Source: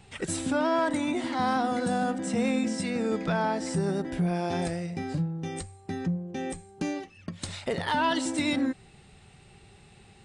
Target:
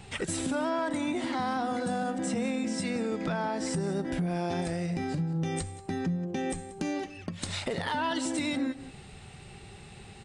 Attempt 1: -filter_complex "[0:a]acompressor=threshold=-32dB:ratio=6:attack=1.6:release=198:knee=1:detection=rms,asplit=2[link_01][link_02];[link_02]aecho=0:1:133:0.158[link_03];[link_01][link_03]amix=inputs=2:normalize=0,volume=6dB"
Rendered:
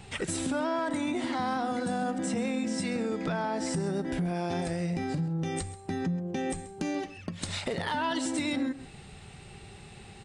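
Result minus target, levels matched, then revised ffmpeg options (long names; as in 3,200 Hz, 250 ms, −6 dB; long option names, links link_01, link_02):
echo 51 ms early
-filter_complex "[0:a]acompressor=threshold=-32dB:ratio=6:attack=1.6:release=198:knee=1:detection=rms,asplit=2[link_01][link_02];[link_02]aecho=0:1:184:0.158[link_03];[link_01][link_03]amix=inputs=2:normalize=0,volume=6dB"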